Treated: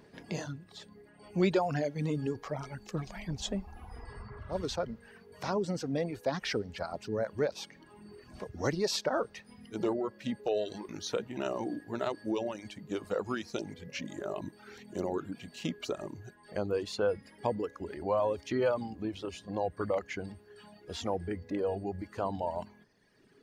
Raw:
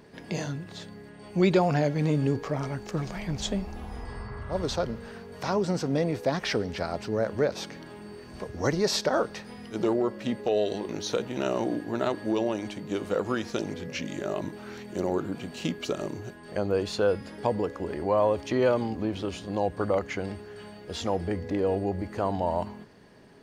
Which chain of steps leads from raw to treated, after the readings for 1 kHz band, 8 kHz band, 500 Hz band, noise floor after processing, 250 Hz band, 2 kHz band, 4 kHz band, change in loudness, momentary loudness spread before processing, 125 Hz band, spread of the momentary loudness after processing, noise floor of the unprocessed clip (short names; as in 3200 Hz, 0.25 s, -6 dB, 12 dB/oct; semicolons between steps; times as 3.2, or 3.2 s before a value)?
-5.5 dB, -5.0 dB, -5.5 dB, -59 dBFS, -6.5 dB, -5.5 dB, -5.0 dB, -6.0 dB, 14 LU, -7.5 dB, 16 LU, -46 dBFS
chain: reverb removal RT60 1.4 s; gain -4.5 dB